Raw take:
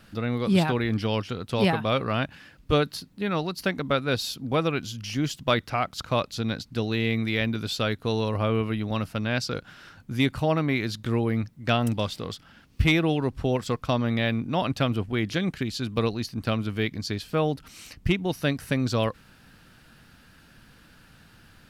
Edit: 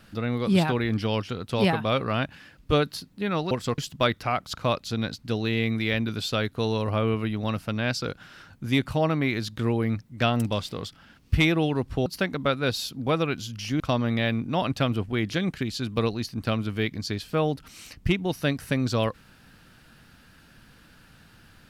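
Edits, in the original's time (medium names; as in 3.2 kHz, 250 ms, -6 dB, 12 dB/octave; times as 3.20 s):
3.51–5.25 s: swap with 13.53–13.80 s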